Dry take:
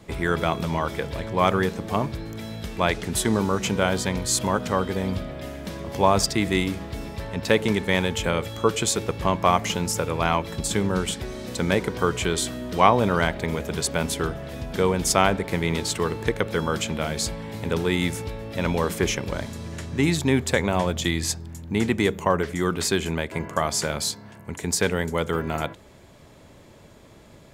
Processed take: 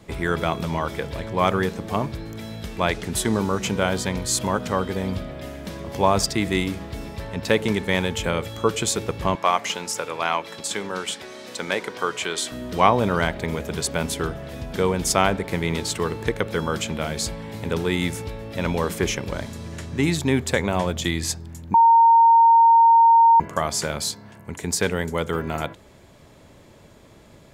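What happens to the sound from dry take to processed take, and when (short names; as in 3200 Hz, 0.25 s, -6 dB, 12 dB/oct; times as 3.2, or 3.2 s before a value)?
9.35–12.52 weighting filter A
21.74–23.4 bleep 920 Hz -10 dBFS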